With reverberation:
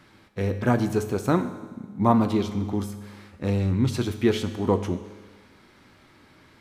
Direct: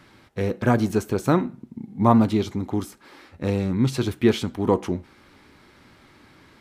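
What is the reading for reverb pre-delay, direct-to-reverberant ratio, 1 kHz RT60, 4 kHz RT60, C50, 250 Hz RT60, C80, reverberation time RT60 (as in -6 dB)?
9 ms, 9.5 dB, 1.4 s, 1.4 s, 11.0 dB, 1.4 s, 12.5 dB, 1.4 s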